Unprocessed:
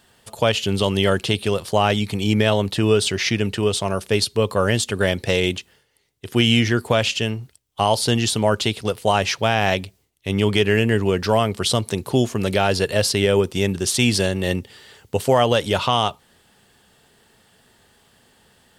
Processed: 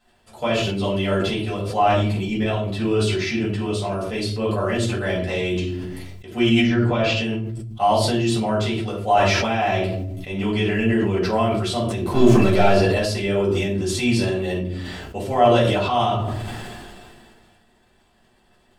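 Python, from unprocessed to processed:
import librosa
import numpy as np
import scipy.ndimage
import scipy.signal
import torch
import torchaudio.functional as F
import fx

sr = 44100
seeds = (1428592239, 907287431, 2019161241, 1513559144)

y = fx.high_shelf(x, sr, hz=6100.0, db=-9.5)
y = y + 0.32 * np.pad(y, (int(3.0 * sr / 1000.0), 0))[:len(y)]
y = fx.level_steps(y, sr, step_db=9, at=(1.89, 2.64))
y = fx.air_absorb(y, sr, metres=92.0, at=(6.65, 7.18), fade=0.02)
y = fx.leveller(y, sr, passes=2, at=(11.99, 12.75))
y = fx.room_shoebox(y, sr, seeds[0], volume_m3=370.0, walls='furnished', distance_m=6.7)
y = fx.sustainer(y, sr, db_per_s=25.0)
y = y * 10.0 ** (-14.5 / 20.0)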